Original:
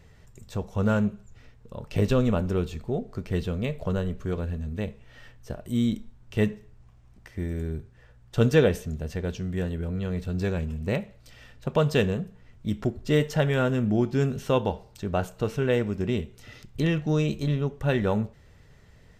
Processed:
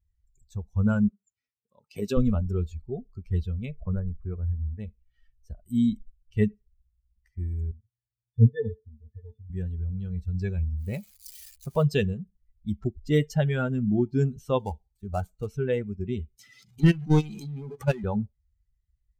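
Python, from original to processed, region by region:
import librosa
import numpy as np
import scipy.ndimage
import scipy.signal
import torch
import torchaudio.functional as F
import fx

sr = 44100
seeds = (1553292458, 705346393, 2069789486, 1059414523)

y = fx.chain(x, sr, fx.highpass(hz=190.0, slope=12),
    fx.high_shelf(hz=5100.0, db=4.0), at=(1.08, 2.17))
y = fx.chain(y, sr, fx.delta_hold(step_db=-50.0),
    fx.steep_lowpass(hz=2400.0, slope=72), at=(3.74, 4.8))
y = fx.chain(y, sr, fx.block_float(bits=5),
    fx.tilt_shelf(db=4.0, hz=860.0),
    fx.octave_resonator(note='A', decay_s=0.16), at=(7.71, 9.5))
y = fx.chain(y, sr, fx.crossing_spikes(level_db=-22.5),
    fx.high_shelf(hz=4300.0, db=-9.5), at=(10.78, 11.84))
y = fx.chain(y, sr, fx.dead_time(dead_ms=0.096),
    fx.notch(hz=5100.0, q=25.0), at=(14.59, 15.47))
y = fx.chain(y, sr, fx.highpass(hz=130.0, slope=24),
    fx.level_steps(step_db=23),
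    fx.power_curve(exponent=0.5), at=(16.39, 18.04))
y = fx.bin_expand(y, sr, power=2.0)
y = fx.low_shelf(y, sr, hz=180.0, db=10.5)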